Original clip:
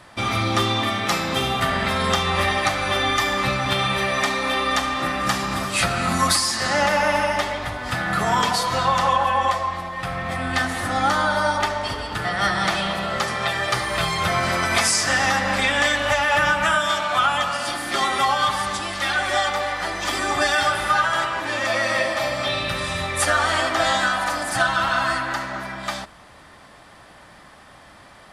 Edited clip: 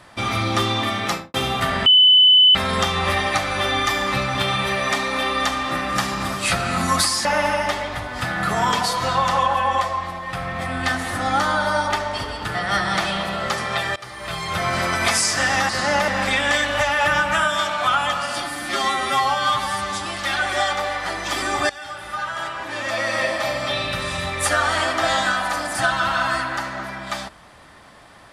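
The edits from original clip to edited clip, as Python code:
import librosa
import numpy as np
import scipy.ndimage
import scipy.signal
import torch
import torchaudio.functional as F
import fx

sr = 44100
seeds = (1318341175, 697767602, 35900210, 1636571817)

y = fx.studio_fade_out(x, sr, start_s=1.06, length_s=0.28)
y = fx.edit(y, sr, fx.insert_tone(at_s=1.86, length_s=0.69, hz=3010.0, db=-8.5),
    fx.move(start_s=6.56, length_s=0.39, to_s=15.39),
    fx.fade_in_from(start_s=13.66, length_s=0.81, floor_db=-20.5),
    fx.stretch_span(start_s=17.73, length_s=1.09, factor=1.5),
    fx.fade_in_from(start_s=20.46, length_s=1.61, floor_db=-19.5), tone=tone)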